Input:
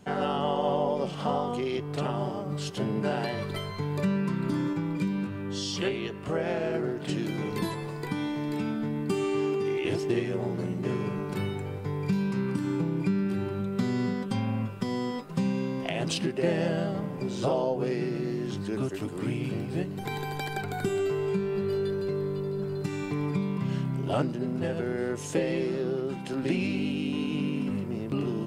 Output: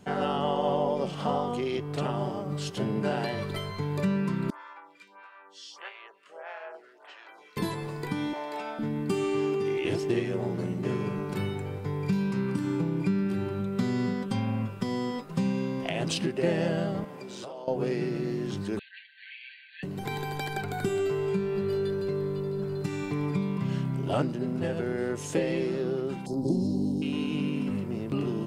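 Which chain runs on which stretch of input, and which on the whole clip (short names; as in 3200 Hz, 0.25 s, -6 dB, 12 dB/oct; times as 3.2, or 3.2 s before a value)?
4.5–7.57 HPF 890 Hz 24 dB/oct + tilt -4.5 dB/oct + photocell phaser 1.6 Hz
8.33–8.79 resonant high-pass 690 Hz, resonance Q 2.9 + high shelf 8700 Hz -6.5 dB
17.04–17.68 HPF 580 Hz 6 dB/oct + compressor 12:1, threshold -36 dBFS
18.79–19.83 median filter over 9 samples + brick-wall FIR band-pass 1500–4600 Hz + comb 5.7 ms, depth 74%
26.26–27.02 Chebyshev band-stop 900–4700 Hz, order 3 + low shelf 180 Hz +5 dB
whole clip: dry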